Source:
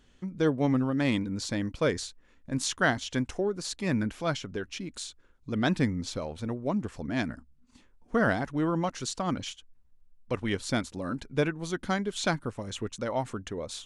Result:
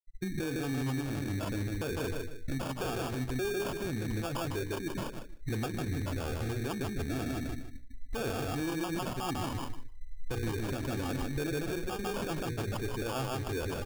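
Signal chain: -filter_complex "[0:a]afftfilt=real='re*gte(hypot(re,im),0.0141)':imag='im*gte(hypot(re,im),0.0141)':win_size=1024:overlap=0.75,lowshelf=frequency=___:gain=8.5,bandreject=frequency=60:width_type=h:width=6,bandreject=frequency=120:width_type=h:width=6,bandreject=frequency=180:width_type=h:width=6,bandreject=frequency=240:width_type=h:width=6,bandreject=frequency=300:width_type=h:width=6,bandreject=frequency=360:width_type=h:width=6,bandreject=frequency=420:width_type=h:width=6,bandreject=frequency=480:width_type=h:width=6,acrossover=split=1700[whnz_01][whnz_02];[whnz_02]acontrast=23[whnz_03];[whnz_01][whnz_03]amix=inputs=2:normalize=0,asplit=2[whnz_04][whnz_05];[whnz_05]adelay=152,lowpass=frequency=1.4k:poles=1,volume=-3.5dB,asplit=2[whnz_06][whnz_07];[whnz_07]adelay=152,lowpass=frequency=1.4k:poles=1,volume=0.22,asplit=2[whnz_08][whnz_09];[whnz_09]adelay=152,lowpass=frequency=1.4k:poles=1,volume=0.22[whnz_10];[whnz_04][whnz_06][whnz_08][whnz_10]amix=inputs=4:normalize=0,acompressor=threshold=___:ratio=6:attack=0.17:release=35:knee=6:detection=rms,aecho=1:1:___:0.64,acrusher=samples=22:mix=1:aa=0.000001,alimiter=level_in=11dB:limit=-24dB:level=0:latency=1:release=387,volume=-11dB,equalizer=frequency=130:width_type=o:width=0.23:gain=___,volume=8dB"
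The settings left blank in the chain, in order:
200, -29dB, 2.6, 3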